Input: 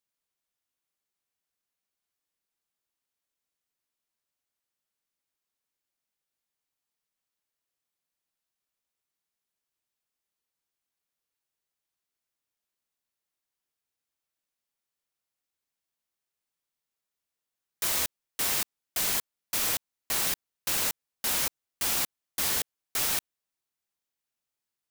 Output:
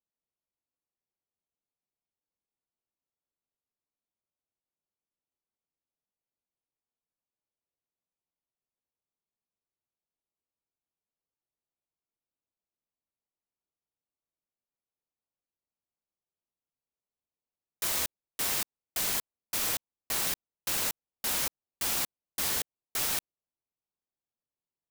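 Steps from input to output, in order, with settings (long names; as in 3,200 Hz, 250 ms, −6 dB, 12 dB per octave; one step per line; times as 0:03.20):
adaptive Wiener filter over 25 samples
level −1.5 dB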